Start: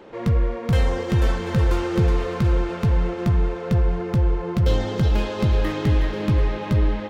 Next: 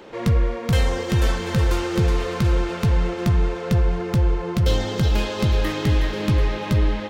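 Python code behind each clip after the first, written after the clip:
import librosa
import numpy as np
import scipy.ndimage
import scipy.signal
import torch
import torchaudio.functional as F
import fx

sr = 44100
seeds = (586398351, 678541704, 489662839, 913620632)

y = fx.high_shelf(x, sr, hz=2600.0, db=8.5)
y = fx.rider(y, sr, range_db=10, speed_s=0.5)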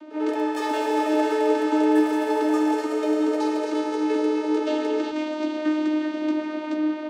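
y = fx.vocoder(x, sr, bands=16, carrier='saw', carrier_hz=307.0)
y = fx.echo_pitch(y, sr, ms=101, semitones=6, count=3, db_per_echo=-3.0)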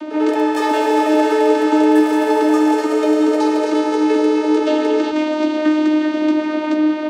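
y = fx.band_squash(x, sr, depth_pct=40)
y = F.gain(torch.from_numpy(y), 7.5).numpy()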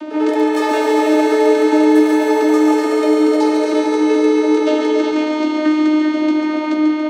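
y = fx.echo_thinned(x, sr, ms=141, feedback_pct=58, hz=370.0, wet_db=-5.5)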